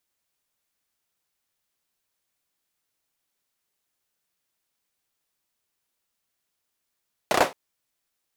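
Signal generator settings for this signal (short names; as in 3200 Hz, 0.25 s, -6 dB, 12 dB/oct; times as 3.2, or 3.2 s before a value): hand clap length 0.22 s, apart 32 ms, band 570 Hz, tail 0.23 s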